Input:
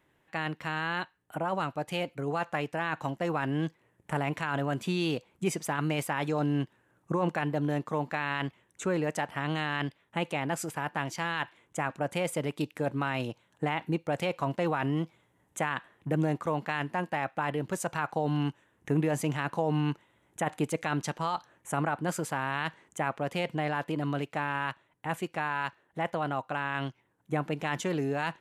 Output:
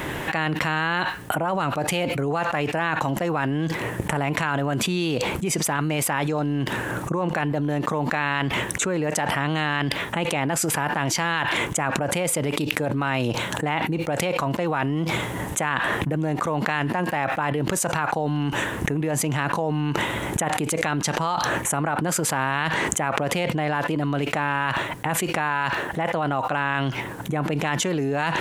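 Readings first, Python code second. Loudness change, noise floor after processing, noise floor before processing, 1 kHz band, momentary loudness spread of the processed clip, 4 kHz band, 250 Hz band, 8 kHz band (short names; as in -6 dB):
+8.0 dB, -31 dBFS, -71 dBFS, +7.5 dB, 3 LU, +11.0 dB, +6.5 dB, +15.5 dB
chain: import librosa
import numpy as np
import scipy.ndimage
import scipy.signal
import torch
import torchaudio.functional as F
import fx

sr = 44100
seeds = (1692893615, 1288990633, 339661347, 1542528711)

y = fx.env_flatten(x, sr, amount_pct=100)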